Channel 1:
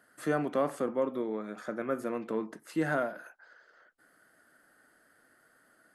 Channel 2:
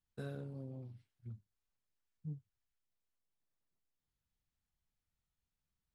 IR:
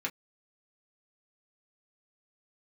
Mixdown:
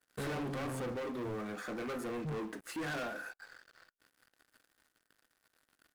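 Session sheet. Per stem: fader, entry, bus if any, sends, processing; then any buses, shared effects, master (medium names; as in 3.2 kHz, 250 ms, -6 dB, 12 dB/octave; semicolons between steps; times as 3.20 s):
-18.5 dB, 0.00 s, send -3.5 dB, saturation -28 dBFS, distortion -11 dB
-2.0 dB, 0.00 s, no send, bass shelf 130 Hz -11 dB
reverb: on, pre-delay 3 ms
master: waveshaping leveller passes 5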